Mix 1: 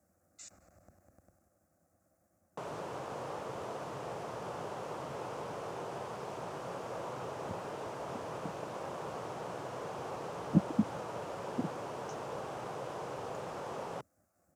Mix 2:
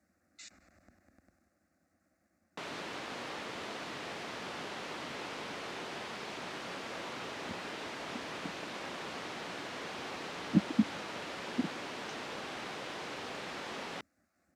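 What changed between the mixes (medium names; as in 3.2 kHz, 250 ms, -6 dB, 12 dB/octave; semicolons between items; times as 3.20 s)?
speech: add treble shelf 4.6 kHz -9.5 dB; master: add ten-band graphic EQ 125 Hz -10 dB, 250 Hz +7 dB, 500 Hz -6 dB, 1 kHz -4 dB, 2 kHz +10 dB, 4 kHz +11 dB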